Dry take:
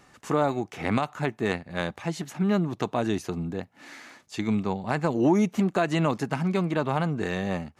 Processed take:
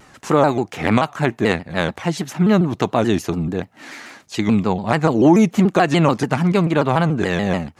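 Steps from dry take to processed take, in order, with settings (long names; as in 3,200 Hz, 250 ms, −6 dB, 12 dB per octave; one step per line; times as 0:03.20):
pitch modulation by a square or saw wave saw down 6.9 Hz, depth 160 cents
level +9 dB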